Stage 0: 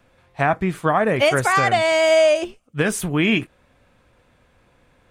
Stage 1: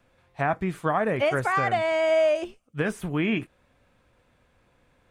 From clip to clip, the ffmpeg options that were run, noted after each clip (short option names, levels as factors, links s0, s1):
-filter_complex "[0:a]acrossover=split=2600[s0][s1];[s1]acompressor=threshold=0.0126:ratio=4:attack=1:release=60[s2];[s0][s2]amix=inputs=2:normalize=0,volume=0.501"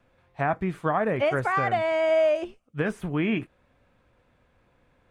-af "highshelf=f=4300:g=-9"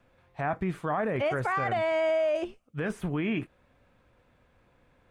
-af "alimiter=limit=0.0944:level=0:latency=1:release=12"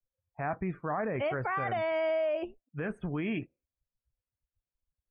-af "afftdn=nr=36:nf=-46,volume=0.668"